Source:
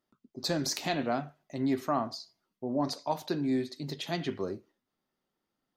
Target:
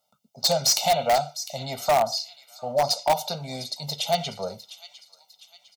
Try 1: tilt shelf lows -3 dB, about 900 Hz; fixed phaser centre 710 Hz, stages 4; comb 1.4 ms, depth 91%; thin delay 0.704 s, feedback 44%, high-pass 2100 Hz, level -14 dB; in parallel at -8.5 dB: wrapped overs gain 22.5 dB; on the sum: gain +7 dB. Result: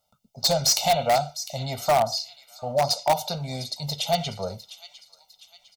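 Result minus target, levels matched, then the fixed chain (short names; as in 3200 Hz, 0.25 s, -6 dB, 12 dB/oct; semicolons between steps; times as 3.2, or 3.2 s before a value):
125 Hz band +4.5 dB
HPF 170 Hz 12 dB/oct; tilt shelf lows -3 dB, about 900 Hz; fixed phaser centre 710 Hz, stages 4; comb 1.4 ms, depth 91%; thin delay 0.704 s, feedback 44%, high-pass 2100 Hz, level -14 dB; in parallel at -8.5 dB: wrapped overs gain 22.5 dB; on the sum: gain +7 dB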